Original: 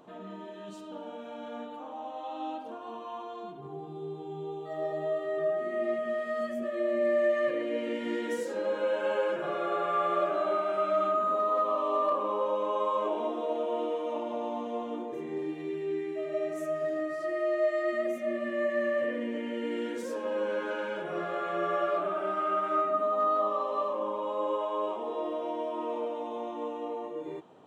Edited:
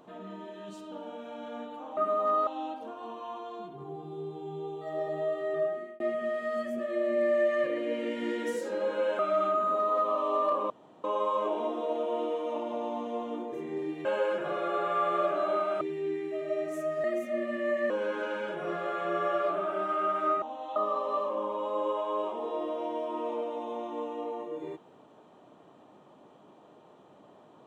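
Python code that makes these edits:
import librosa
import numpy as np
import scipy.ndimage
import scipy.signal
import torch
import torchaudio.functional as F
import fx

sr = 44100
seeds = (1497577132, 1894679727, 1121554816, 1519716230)

y = fx.edit(x, sr, fx.swap(start_s=1.97, length_s=0.34, other_s=22.9, other_length_s=0.5),
    fx.fade_out_span(start_s=5.47, length_s=0.37),
    fx.move(start_s=9.03, length_s=1.76, to_s=15.65),
    fx.room_tone_fill(start_s=12.3, length_s=0.34),
    fx.cut(start_s=16.88, length_s=1.09),
    fx.cut(start_s=18.83, length_s=1.55), tone=tone)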